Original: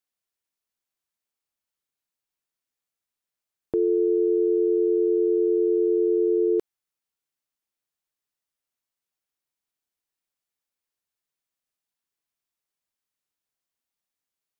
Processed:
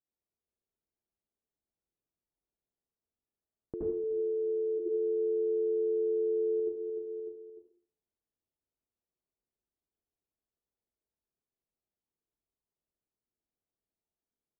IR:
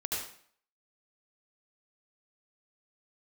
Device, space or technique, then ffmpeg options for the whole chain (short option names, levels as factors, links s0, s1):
television next door: -filter_complex "[0:a]asplit=3[s0][s1][s2];[s0]afade=t=out:st=3.8:d=0.02[s3];[s1]highpass=630,afade=t=in:st=3.8:d=0.02,afade=t=out:st=4.78:d=0.02[s4];[s2]afade=t=in:st=4.78:d=0.02[s5];[s3][s4][s5]amix=inputs=3:normalize=0,aecho=1:1:300|600|900:0.158|0.0618|0.0241,acompressor=threshold=0.0112:ratio=3,lowpass=540[s6];[1:a]atrim=start_sample=2205[s7];[s6][s7]afir=irnorm=-1:irlink=0"